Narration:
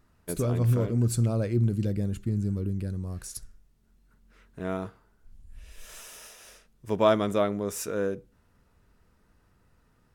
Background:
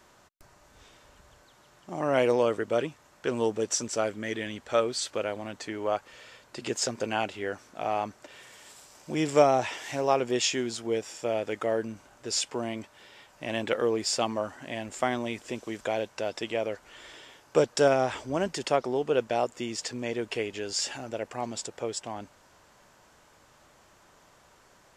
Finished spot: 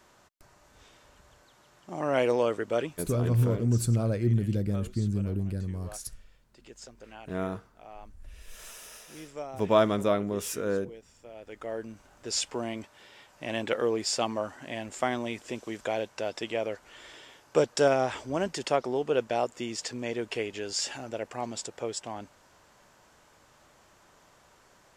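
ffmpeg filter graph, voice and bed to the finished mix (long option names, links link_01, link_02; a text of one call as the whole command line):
ffmpeg -i stem1.wav -i stem2.wav -filter_complex "[0:a]adelay=2700,volume=-0.5dB[link_01];[1:a]volume=16dB,afade=type=out:start_time=3.02:duration=0.32:silence=0.141254,afade=type=in:start_time=11.33:duration=1.04:silence=0.133352[link_02];[link_01][link_02]amix=inputs=2:normalize=0" out.wav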